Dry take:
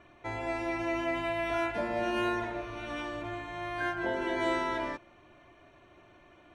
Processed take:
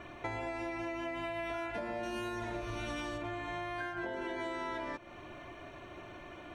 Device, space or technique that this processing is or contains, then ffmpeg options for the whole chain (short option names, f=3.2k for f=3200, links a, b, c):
serial compression, leveller first: -filter_complex "[0:a]asettb=1/sr,asplit=3[a][b][c];[a]atrim=end=2.034[d];[b]atrim=start=2.03:end=3.18,asetpts=PTS-STARTPTS,afade=t=in:d=0.004:c=qsin,afade=t=out:st=1.146:d=0.004:c=qsin,bass=f=250:g=6,treble=f=4k:g=10[e];[c]atrim=start=3.176[f];[d][e]acrossfade=d=0.004:c1=hsin:c2=qsin[g];[g][f]acrossfade=d=0.004:c1=qsin:c2=hsin,acompressor=threshold=-33dB:ratio=6,acompressor=threshold=-46dB:ratio=5,volume=9dB"